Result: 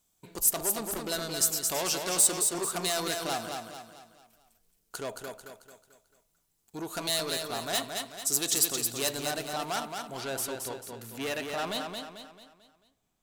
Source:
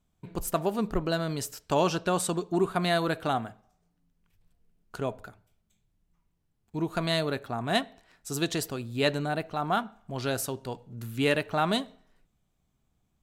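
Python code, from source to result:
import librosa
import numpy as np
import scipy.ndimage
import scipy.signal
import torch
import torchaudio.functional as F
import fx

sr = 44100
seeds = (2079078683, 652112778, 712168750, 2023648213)

y = 10.0 ** (-28.5 / 20.0) * np.tanh(x / 10.0 ** (-28.5 / 20.0))
y = fx.bass_treble(y, sr, bass_db=-11, treble_db=fx.steps((0.0, 15.0), (10.16, 3.0)))
y = fx.echo_feedback(y, sr, ms=221, feedback_pct=43, wet_db=-5)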